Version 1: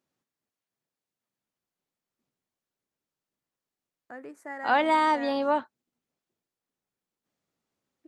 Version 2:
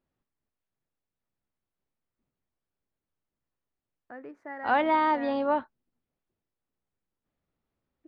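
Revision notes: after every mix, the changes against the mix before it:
second voice: remove high-pass filter 140 Hz 12 dB per octave
master: add high-frequency loss of the air 270 metres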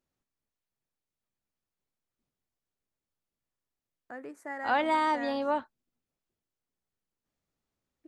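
second voice −4.0 dB
master: remove high-frequency loss of the air 270 metres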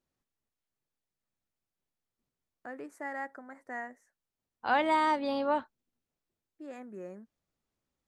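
first voice: entry −1.45 s

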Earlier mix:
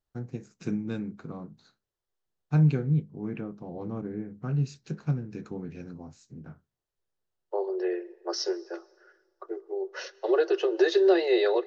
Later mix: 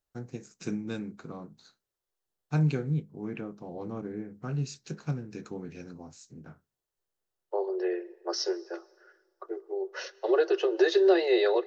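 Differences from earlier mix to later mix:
first voice: add high-shelf EQ 5,200 Hz +11.5 dB
master: add bass and treble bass −5 dB, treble 0 dB

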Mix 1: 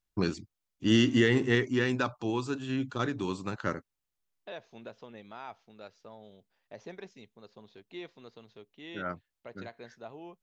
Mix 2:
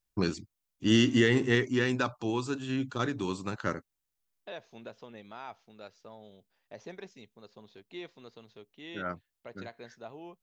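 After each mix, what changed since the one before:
master: add high-shelf EQ 7,300 Hz +6.5 dB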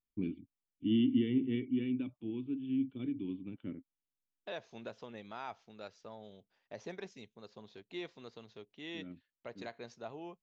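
first voice: add formant resonators in series i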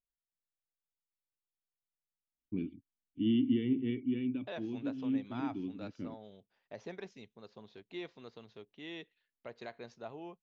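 first voice: entry +2.35 s
master: add high-frequency loss of the air 74 metres

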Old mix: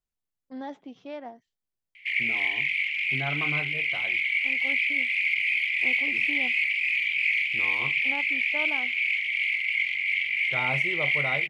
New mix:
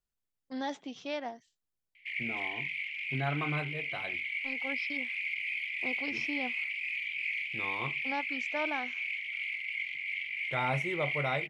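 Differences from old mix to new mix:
first voice: remove low-pass filter 1,100 Hz 6 dB per octave
background −10.0 dB

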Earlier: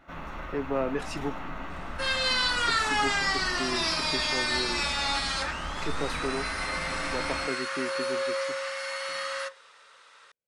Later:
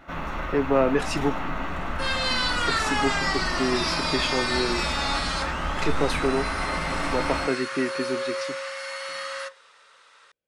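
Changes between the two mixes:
speech +8.0 dB
first sound +7.5 dB

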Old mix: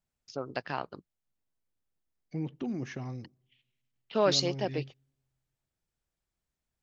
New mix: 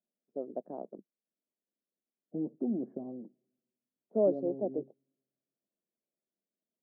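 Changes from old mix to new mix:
second voice +3.0 dB
master: add elliptic band-pass filter 200–650 Hz, stop band 60 dB

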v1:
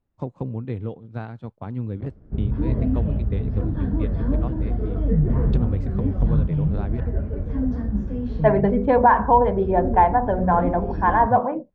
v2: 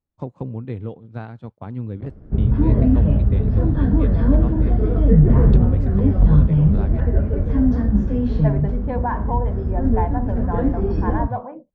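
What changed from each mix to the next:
second voice −10.0 dB
background +7.0 dB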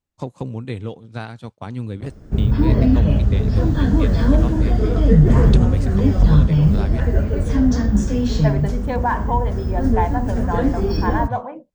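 first voice: add low-pass filter 4,800 Hz 12 dB per octave
master: remove head-to-tape spacing loss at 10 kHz 44 dB

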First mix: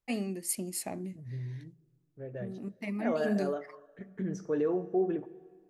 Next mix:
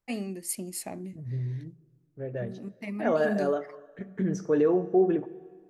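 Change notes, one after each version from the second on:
second voice +6.5 dB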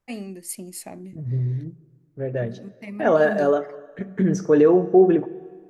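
second voice +8.0 dB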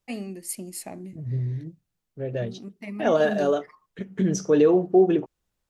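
second voice: add high shelf with overshoot 2,400 Hz +7.5 dB, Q 1.5
reverb: off

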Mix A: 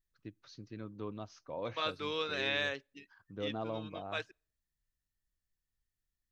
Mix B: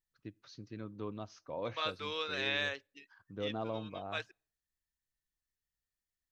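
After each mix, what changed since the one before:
first voice: send +6.5 dB
second voice: add high-pass filter 530 Hz 6 dB per octave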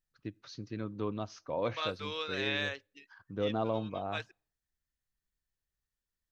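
first voice +6.0 dB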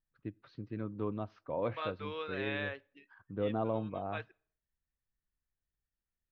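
second voice: send +11.0 dB
master: add high-frequency loss of the air 470 metres

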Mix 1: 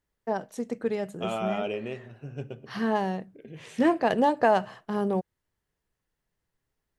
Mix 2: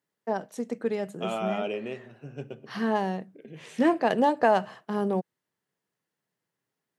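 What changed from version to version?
master: add high-pass filter 140 Hz 24 dB per octave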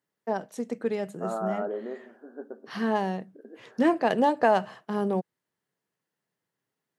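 second voice: add linear-phase brick-wall band-pass 210–1,800 Hz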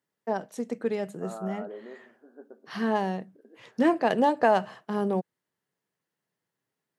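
second voice −8.0 dB

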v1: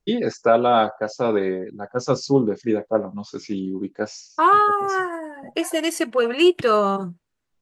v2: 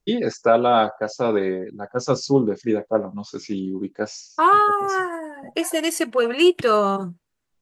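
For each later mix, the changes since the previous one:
master: add high-shelf EQ 8,000 Hz +5.5 dB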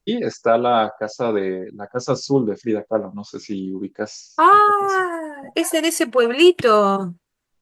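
second voice +3.5 dB

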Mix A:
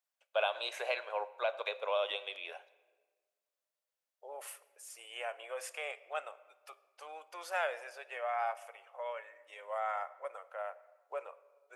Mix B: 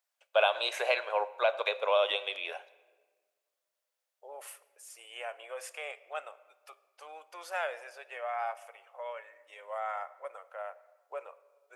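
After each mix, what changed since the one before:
first voice +6.5 dB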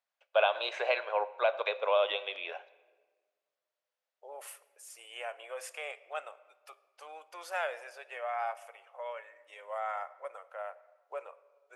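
first voice: add high-frequency loss of the air 150 metres

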